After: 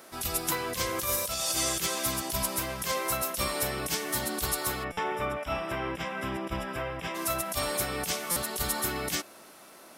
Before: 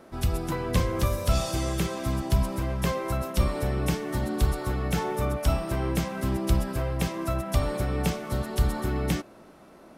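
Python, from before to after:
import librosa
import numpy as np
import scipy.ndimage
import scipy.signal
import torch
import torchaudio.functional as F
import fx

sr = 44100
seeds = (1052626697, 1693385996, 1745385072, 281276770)

y = fx.tilt_eq(x, sr, slope=4.0)
y = fx.over_compress(y, sr, threshold_db=-28.0, ratio=-0.5)
y = fx.savgol(y, sr, points=25, at=(4.83, 7.14), fade=0.02)
y = fx.buffer_glitch(y, sr, at_s=(4.92, 8.31), block=256, repeats=8)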